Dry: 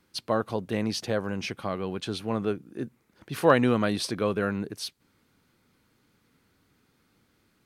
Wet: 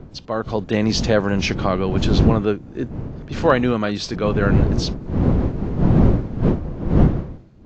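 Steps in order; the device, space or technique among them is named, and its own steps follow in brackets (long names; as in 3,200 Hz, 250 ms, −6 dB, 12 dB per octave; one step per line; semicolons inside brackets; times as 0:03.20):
smartphone video outdoors (wind on the microphone 200 Hz −27 dBFS; automatic gain control gain up to 16.5 dB; level −1 dB; AAC 48 kbit/s 16,000 Hz)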